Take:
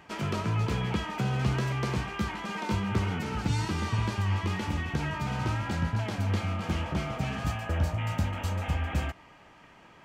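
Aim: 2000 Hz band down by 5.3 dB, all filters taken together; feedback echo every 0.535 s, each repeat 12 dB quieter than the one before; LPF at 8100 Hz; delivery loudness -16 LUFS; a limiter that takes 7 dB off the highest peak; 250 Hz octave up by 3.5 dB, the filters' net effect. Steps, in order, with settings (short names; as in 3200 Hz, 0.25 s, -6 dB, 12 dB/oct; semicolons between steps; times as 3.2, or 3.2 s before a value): LPF 8100 Hz; bell 250 Hz +5 dB; bell 2000 Hz -7 dB; limiter -20.5 dBFS; feedback echo 0.535 s, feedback 25%, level -12 dB; gain +14.5 dB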